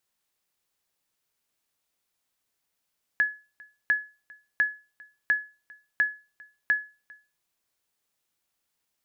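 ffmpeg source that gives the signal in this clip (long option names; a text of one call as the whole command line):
ffmpeg -f lavfi -i "aevalsrc='0.178*(sin(2*PI*1700*mod(t,0.7))*exp(-6.91*mod(t,0.7)/0.31)+0.0531*sin(2*PI*1700*max(mod(t,0.7)-0.4,0))*exp(-6.91*max(mod(t,0.7)-0.4,0)/0.31))':duration=4.2:sample_rate=44100" out.wav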